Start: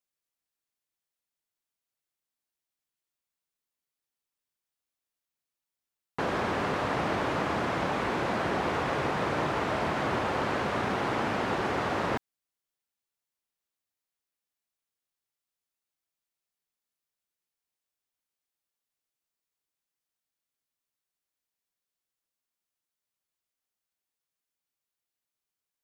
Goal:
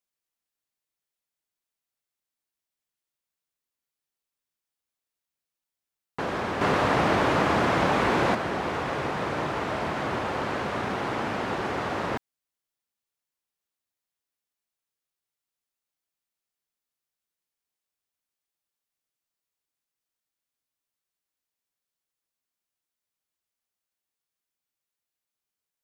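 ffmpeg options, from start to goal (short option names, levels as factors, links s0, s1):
-filter_complex "[0:a]asettb=1/sr,asplit=3[s0][s1][s2];[s0]atrim=end=6.614[s3];[s1]atrim=start=6.61:end=8.35,asetpts=PTS-STARTPTS,afade=t=in:d=0.004:c=qsin,afade=t=out:st=1.736:d=0.004:c=qsin,acontrast=68[s4];[s2]atrim=start=8.346[s5];[s3][s4]acrossfade=d=0.004:c1=hsin:c2=qsin[s6];[s6][s5]acrossfade=d=0.004:c1=qsin:c2=hsin"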